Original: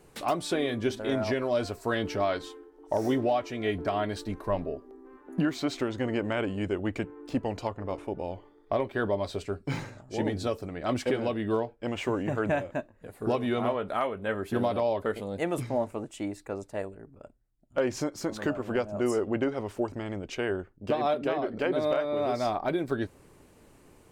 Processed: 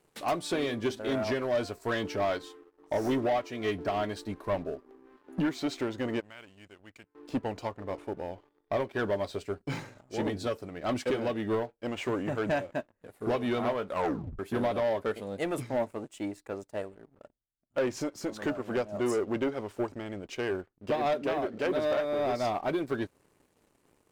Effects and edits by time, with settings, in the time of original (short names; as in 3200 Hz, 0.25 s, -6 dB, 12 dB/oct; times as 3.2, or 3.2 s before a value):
6.2–7.15 passive tone stack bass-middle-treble 5-5-5
13.88 tape stop 0.51 s
whole clip: low shelf 100 Hz -8.5 dB; sample leveller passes 2; upward expander 1.5:1, over -33 dBFS; gain -4.5 dB